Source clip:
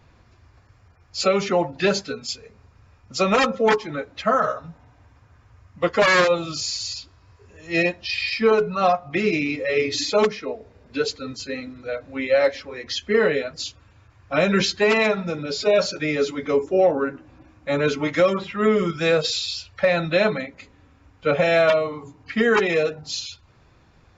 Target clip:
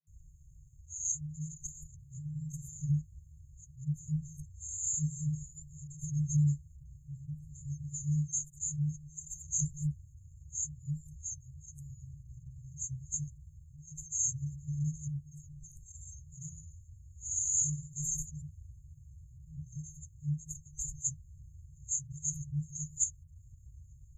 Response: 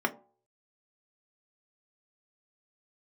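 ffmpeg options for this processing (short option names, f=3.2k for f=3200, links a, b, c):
-filter_complex "[0:a]areverse,equalizer=f=110:w=2.2:g=-13.5,acrossover=split=120|1300[a][b][c];[b]dynaudnorm=f=960:g=3:m=11.5dB[d];[a][d][c]amix=inputs=3:normalize=0,afftfilt=real='re*(1-between(b*sr/4096,160,6300))':imag='im*(1-between(b*sr/4096,160,6300))':win_size=4096:overlap=0.75,volume=5dB"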